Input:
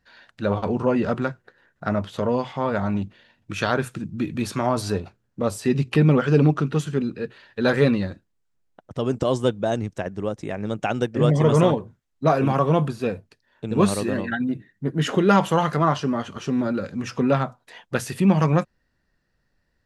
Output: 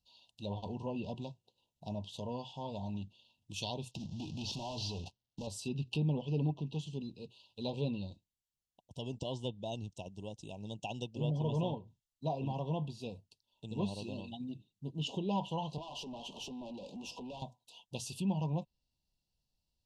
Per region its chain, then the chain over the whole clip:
3.91–5.47 CVSD 32 kbps + sample leveller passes 3 + compressor 2.5:1, threshold -26 dBFS
15.78–17.42 HPF 180 Hz 24 dB/oct + compressor 8:1, threshold -30 dBFS + overdrive pedal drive 25 dB, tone 1200 Hz, clips at -18 dBFS
whole clip: Chebyshev band-stop 980–2700 Hz, order 5; treble ducked by the level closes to 2400 Hz, closed at -16 dBFS; passive tone stack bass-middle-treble 5-5-5; gain +1.5 dB

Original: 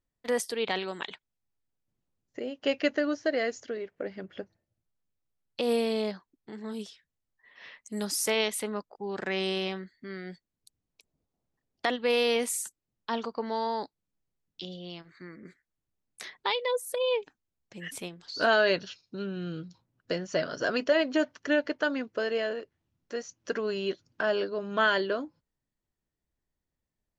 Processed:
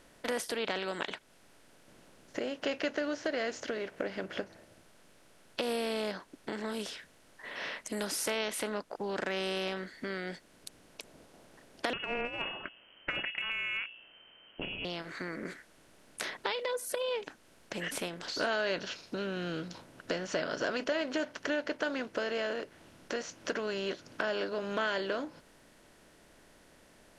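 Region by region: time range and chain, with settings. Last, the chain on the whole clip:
11.93–14.85 notches 60/120/180/240/300/360/420/480 Hz + inverted band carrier 3100 Hz + negative-ratio compressor -31 dBFS, ratio -0.5
whole clip: per-bin compression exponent 0.6; compressor 2:1, threshold -37 dBFS

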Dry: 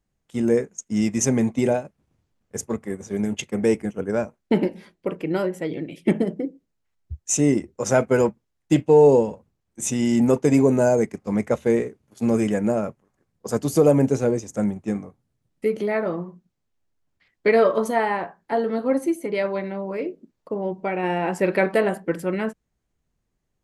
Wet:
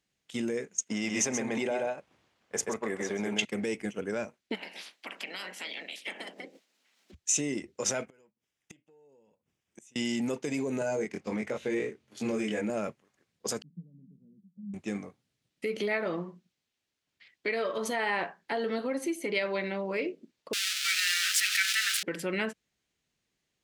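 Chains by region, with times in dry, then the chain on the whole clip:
0.87–3.45 bell 900 Hz +12.5 dB 2.6 oct + echo 0.129 s -5.5 dB
4.54–7.13 spectral limiter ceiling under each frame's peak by 28 dB + compressor 4:1, threshold -39 dBFS + rippled Chebyshev high-pass 180 Hz, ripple 3 dB
8.06–9.96 bell 4200 Hz -13 dB 0.24 oct + compressor 5:1, threshold -29 dBFS + flipped gate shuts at -35 dBFS, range -28 dB
10.79–12.7 high shelf 5600 Hz -7 dB + doubler 23 ms -2.5 dB
13.62–14.74 compressor 2.5:1, threshold -20 dBFS + Butterworth band-pass 180 Hz, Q 6.8
20.53–22.03 switching spikes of -12.5 dBFS + brick-wall FIR high-pass 1200 Hz + high shelf 10000 Hz -10.5 dB
whole clip: compressor, threshold -22 dBFS; limiter -20 dBFS; weighting filter D; gain -3 dB

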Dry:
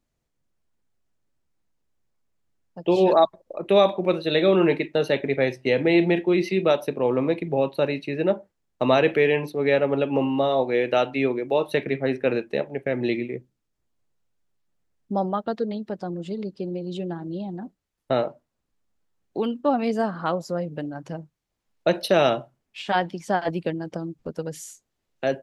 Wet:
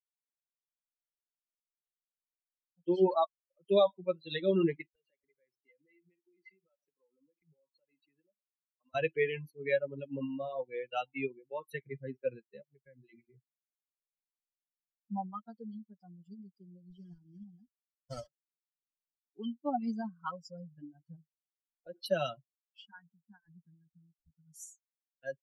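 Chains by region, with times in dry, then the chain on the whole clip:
4.87–8.95 BPF 190–3900 Hz + compressor, threshold -32 dBFS
12.62–13.3 air absorption 62 m + compressor 2:1, threshold -27 dBFS + notches 60/120/180/240/300/360 Hz
16.9–18.27 block floating point 3-bit + LPF 9400 Hz 24 dB/oct + high shelf 5100 Hz -11 dB
20.83–22.06 LPF 4300 Hz + bell 410 Hz +6 dB 0.93 oct + compressor 2.5:1, threshold -22 dBFS
22.85–24.54 fixed phaser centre 1400 Hz, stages 4 + compressor 1.5:1, threshold -34 dBFS + air absorption 490 m
whole clip: per-bin expansion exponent 3; comb 5.4 ms, depth 36%; gain -5.5 dB

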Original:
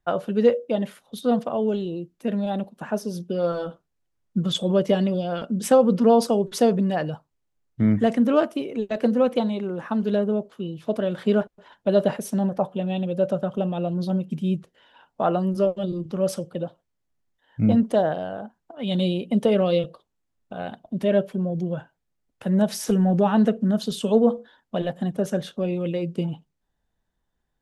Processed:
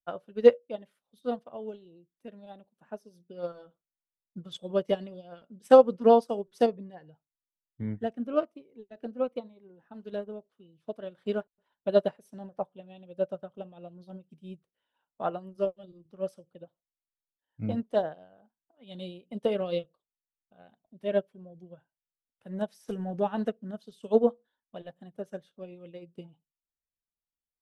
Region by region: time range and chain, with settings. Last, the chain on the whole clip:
6.66–9.94 high shelf 3800 Hz -11.5 dB + cascading phaser falling 1.1 Hz
whole clip: notch 6900 Hz, Q 14; dynamic EQ 210 Hz, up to -5 dB, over -33 dBFS, Q 1.9; upward expander 2.5:1, over -32 dBFS; gain +2.5 dB

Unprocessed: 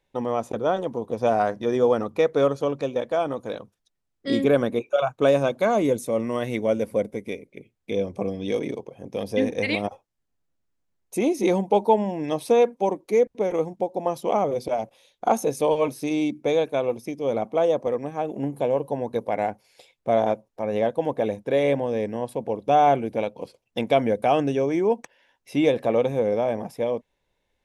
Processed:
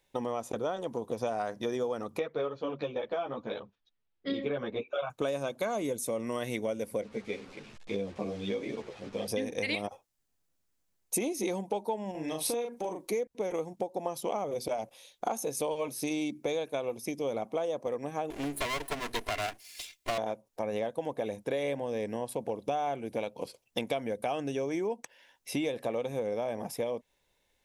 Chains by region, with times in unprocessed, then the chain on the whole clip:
2.19–5.1 LPF 3800 Hz 24 dB/oct + ensemble effect
7.01–9.28 delta modulation 64 kbps, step -40.5 dBFS + LPF 3700 Hz + ensemble effect
12.11–13.09 compressor 3:1, threshold -32 dBFS + doubler 38 ms -3.5 dB
18.3–20.18 minimum comb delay 2.9 ms + resonant high shelf 1600 Hz +7 dB, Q 1.5
whole clip: low shelf 360 Hz -3 dB; compressor 6:1, threshold -30 dBFS; high shelf 4300 Hz +9.5 dB

